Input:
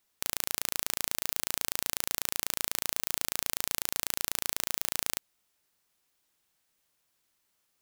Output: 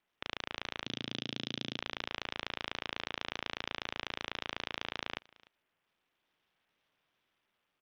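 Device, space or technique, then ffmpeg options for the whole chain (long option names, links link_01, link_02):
Bluetooth headset: -filter_complex "[0:a]asettb=1/sr,asplit=3[link_01][link_02][link_03];[link_01]atrim=end=0.834[link_04];[link_02]atrim=start=0.83:end=1.79,asetpts=PTS-STARTPTS,afade=type=in:duration=0.004:curve=qsin,afade=type=out:start_time=0.956:duration=0.004:curve=qsin,equalizer=frequency=125:width_type=o:width=1:gain=10,equalizer=frequency=250:width_type=o:width=1:gain=11,equalizer=frequency=1000:width_type=o:width=1:gain=-12,equalizer=frequency=2000:width_type=o:width=1:gain=-6,equalizer=frequency=4000:width_type=o:width=1:gain=10,equalizer=frequency=8000:width_type=o:width=1:gain=-6,equalizer=frequency=16000:width_type=o:width=1:gain=-3[link_05];[link_03]atrim=start=1.786[link_06];[link_04][link_05]acrossfade=duration=0.004:curve1=hsin:curve2=qsin[link_07];[link_07][link_06]acrossfade=duration=0.004:curve1=qsin:curve2=hsin,highpass=frequency=110:poles=1,aecho=1:1:299:0.0631,dynaudnorm=framelen=410:gausssize=7:maxgain=8dB,aresample=8000,aresample=44100,volume=-1dB" -ar 48000 -c:a sbc -b:a 64k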